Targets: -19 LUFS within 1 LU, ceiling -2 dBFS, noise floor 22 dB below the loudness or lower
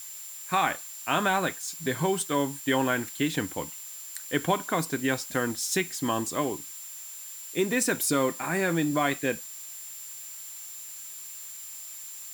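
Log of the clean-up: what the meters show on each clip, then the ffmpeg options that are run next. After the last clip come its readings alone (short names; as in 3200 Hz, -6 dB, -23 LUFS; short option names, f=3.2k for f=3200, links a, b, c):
steady tone 7300 Hz; tone level -42 dBFS; noise floor -42 dBFS; noise floor target -52 dBFS; loudness -29.5 LUFS; peak -9.5 dBFS; loudness target -19.0 LUFS
-> -af "bandreject=f=7.3k:w=30"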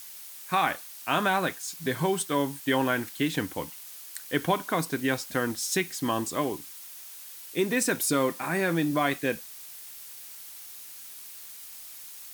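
steady tone none; noise floor -44 dBFS; noise floor target -50 dBFS
-> -af "afftdn=nr=6:nf=-44"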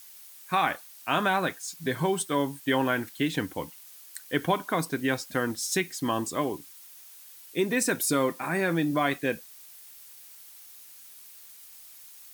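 noise floor -49 dBFS; noise floor target -50 dBFS
-> -af "afftdn=nr=6:nf=-49"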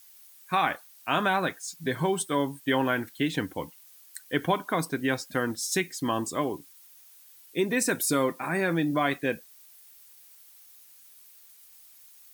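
noise floor -54 dBFS; loudness -28.0 LUFS; peak -10.0 dBFS; loudness target -19.0 LUFS
-> -af "volume=9dB,alimiter=limit=-2dB:level=0:latency=1"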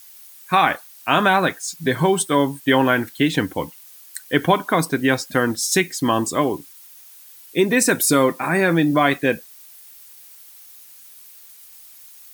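loudness -19.0 LUFS; peak -2.0 dBFS; noise floor -45 dBFS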